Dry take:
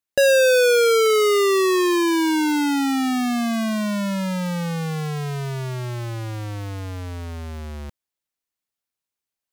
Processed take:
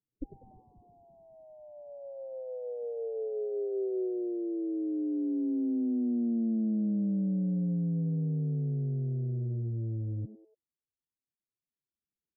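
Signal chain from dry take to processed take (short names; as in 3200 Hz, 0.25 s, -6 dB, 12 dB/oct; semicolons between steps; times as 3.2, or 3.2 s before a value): low shelf 97 Hz -10 dB; in parallel at -1.5 dB: compressor, threshold -25 dBFS, peak gain reduction 10 dB; on the sum: formant-preserving pitch shift +11 st; soft clip -16.5 dBFS, distortion -12 dB; Gaussian blur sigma 21 samples; varispeed -23%; frequency-shifting echo 95 ms, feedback 38%, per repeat +110 Hz, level -15.5 dB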